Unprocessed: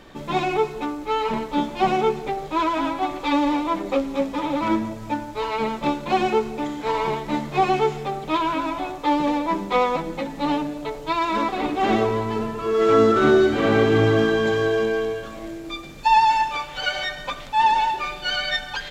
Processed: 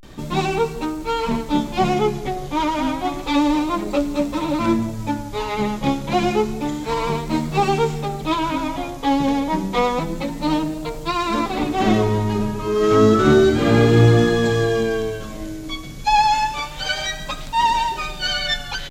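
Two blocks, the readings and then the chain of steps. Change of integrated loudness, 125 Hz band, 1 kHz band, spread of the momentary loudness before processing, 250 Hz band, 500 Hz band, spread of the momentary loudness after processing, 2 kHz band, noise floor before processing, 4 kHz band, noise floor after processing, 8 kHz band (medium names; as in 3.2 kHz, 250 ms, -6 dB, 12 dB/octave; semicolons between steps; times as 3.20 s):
+2.0 dB, +9.0 dB, 0.0 dB, 11 LU, +4.0 dB, +1.0 dB, 11 LU, +0.5 dB, -36 dBFS, +3.5 dB, -32 dBFS, +8.5 dB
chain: tone controls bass +10 dB, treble +9 dB; vibrato 0.3 Hz 93 cents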